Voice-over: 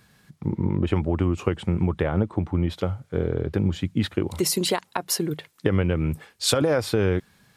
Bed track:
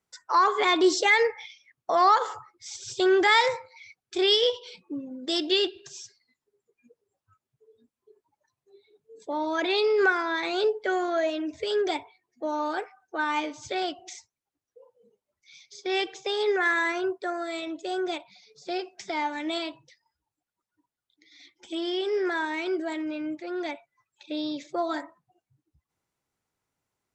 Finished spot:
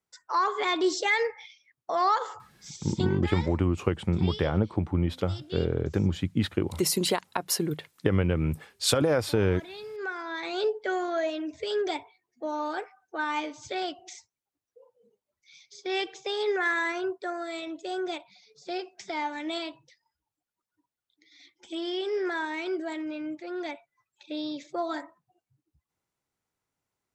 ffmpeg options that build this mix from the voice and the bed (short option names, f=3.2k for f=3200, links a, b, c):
-filter_complex "[0:a]adelay=2400,volume=-2.5dB[a];[1:a]volume=10.5dB,afade=t=out:st=2.87:d=0.36:silence=0.223872,afade=t=in:st=9.93:d=0.74:silence=0.177828[b];[a][b]amix=inputs=2:normalize=0"